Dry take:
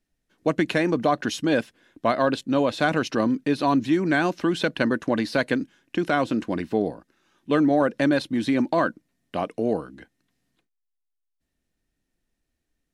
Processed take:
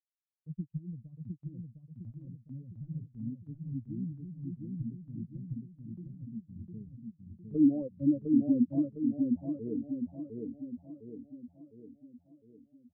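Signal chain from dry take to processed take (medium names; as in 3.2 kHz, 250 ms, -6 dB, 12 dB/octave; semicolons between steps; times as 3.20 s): expander on every frequency bin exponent 3; inverse Chebyshev low-pass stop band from 750 Hz, stop band 70 dB, from 7.54 s stop band from 1.6 kHz; gate with hold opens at -55 dBFS; level rider gain up to 8 dB; feedback delay 707 ms, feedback 50%, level -3 dB; trim -5.5 dB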